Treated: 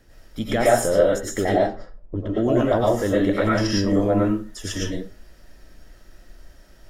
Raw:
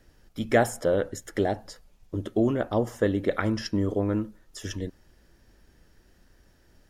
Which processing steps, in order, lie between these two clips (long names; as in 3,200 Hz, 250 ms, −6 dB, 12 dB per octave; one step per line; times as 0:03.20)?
0:01.45–0:02.60: low-pass that shuts in the quiet parts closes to 500 Hz, open at −21 dBFS
brickwall limiter −16.5 dBFS, peak gain reduction 9 dB
convolution reverb RT60 0.30 s, pre-delay 70 ms, DRR −5.5 dB
level +3 dB